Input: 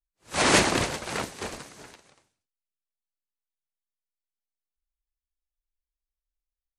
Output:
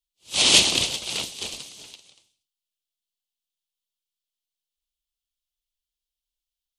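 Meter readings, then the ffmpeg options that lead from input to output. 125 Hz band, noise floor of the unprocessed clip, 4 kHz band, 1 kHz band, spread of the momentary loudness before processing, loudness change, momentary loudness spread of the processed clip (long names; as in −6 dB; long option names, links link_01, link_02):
−5.5 dB, below −85 dBFS, +10.5 dB, −8.0 dB, 17 LU, +5.0 dB, 18 LU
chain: -af "highshelf=frequency=2300:width_type=q:width=3:gain=11,volume=-5.5dB"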